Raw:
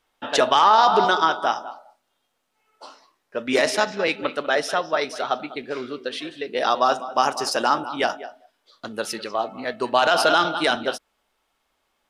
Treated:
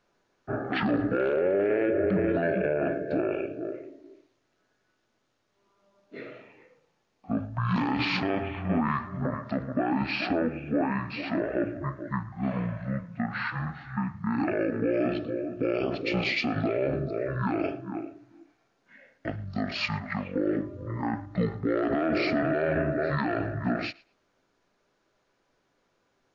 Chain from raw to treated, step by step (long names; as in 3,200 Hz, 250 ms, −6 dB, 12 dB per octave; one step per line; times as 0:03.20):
change of speed 0.459×
feedback echo with a high-pass in the loop 113 ms, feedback 17%, high-pass 420 Hz, level −23 dB
brickwall limiter −17.5 dBFS, peak gain reduction 11.5 dB